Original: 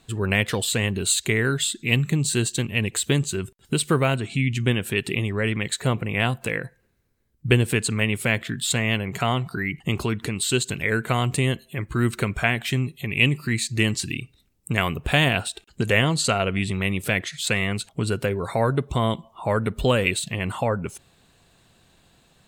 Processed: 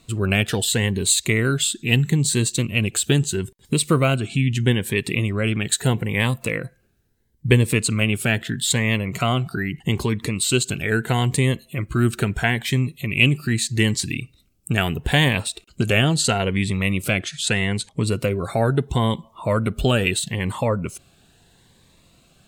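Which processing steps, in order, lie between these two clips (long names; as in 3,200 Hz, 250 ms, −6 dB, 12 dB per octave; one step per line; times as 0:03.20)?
0:05.67–0:06.43: high-shelf EQ 6,700 Hz +7 dB
0:17.11–0:18.03: low-pass filter 11,000 Hz 24 dB per octave
phaser whose notches keep moving one way rising 0.77 Hz
level +3.5 dB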